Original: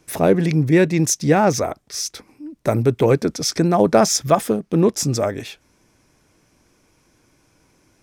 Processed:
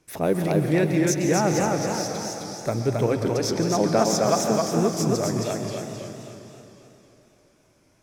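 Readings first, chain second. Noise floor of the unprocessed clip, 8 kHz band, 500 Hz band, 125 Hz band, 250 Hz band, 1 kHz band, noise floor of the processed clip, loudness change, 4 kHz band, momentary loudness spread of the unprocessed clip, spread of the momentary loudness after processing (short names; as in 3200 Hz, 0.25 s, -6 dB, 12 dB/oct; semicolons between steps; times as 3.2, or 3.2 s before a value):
-61 dBFS, -5.0 dB, -4.5 dB, -5.0 dB, -4.0 dB, -4.0 dB, -61 dBFS, -5.0 dB, -4.5 dB, 11 LU, 11 LU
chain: plate-style reverb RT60 3.3 s, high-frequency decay 0.95×, pre-delay 0.11 s, DRR 5.5 dB; dynamic EQ 9400 Hz, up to -4 dB, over -40 dBFS, Q 2.5; warbling echo 0.266 s, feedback 48%, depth 112 cents, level -3 dB; gain -7.5 dB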